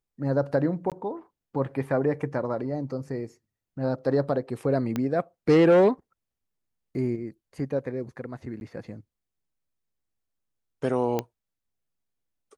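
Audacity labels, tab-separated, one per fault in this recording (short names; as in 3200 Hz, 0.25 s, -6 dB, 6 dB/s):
0.900000	0.920000	gap 17 ms
4.960000	4.960000	pop -15 dBFS
8.600000	8.610000	gap
11.190000	11.190000	pop -13 dBFS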